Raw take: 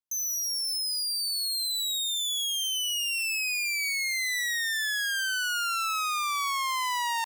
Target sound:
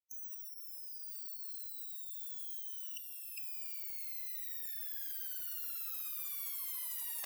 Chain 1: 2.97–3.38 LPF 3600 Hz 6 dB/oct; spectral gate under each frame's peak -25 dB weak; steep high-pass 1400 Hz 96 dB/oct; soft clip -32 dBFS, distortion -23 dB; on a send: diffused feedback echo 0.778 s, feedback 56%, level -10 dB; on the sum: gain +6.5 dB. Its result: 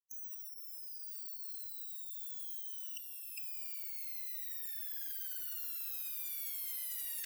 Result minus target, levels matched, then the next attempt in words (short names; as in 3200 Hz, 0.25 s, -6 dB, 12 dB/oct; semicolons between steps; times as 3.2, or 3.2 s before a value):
1000 Hz band -8.5 dB
2.97–3.38 LPF 3600 Hz 6 dB/oct; spectral gate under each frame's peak -25 dB weak; soft clip -32 dBFS, distortion -23 dB; on a send: diffused feedback echo 0.778 s, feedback 56%, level -10 dB; on the sum: gain +6.5 dB